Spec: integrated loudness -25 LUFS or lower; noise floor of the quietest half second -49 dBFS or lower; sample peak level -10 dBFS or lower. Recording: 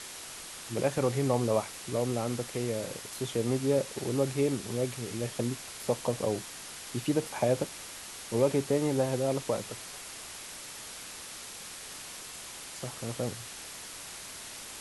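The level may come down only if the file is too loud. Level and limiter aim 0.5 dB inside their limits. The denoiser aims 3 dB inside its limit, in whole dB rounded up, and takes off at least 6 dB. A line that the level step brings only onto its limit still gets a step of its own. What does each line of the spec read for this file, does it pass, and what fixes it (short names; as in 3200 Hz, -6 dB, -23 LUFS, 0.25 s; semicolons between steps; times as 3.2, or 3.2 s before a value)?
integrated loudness -33.0 LUFS: OK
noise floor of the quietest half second -44 dBFS: fail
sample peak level -13.0 dBFS: OK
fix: denoiser 8 dB, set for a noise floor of -44 dBFS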